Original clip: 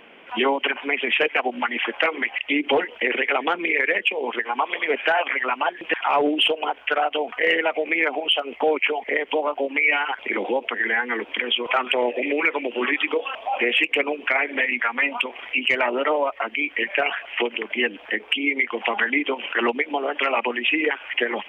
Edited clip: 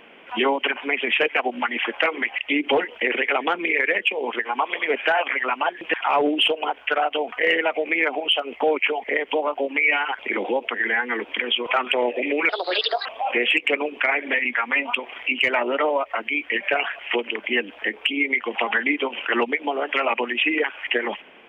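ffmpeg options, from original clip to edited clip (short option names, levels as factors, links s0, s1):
-filter_complex "[0:a]asplit=3[s0][s1][s2];[s0]atrim=end=12.494[s3];[s1]atrim=start=12.49:end=13.32,asetpts=PTS-STARTPTS,asetrate=64827,aresample=44100[s4];[s2]atrim=start=13.316[s5];[s3][s4]acrossfade=d=0.004:c1=hsin:c2=hsin[s6];[s6][s5]acrossfade=d=0.004:c1=hsin:c2=hsin"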